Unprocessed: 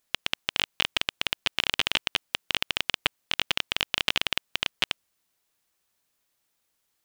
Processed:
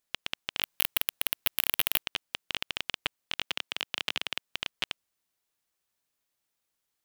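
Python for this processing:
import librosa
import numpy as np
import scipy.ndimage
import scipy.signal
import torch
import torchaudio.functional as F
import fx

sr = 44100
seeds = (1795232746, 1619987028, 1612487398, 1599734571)

y = fx.resample_bad(x, sr, factor=3, down='none', up='zero_stuff', at=(0.62, 2.03))
y = fx.highpass(y, sr, hz=150.0, slope=12, at=(3.45, 4.48))
y = F.gain(torch.from_numpy(y), -6.5).numpy()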